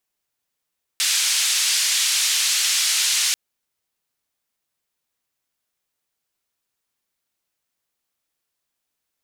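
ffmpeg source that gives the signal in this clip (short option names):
-f lavfi -i "anoisesrc=c=white:d=2.34:r=44100:seed=1,highpass=f=2600,lowpass=f=7400,volume=-8.7dB"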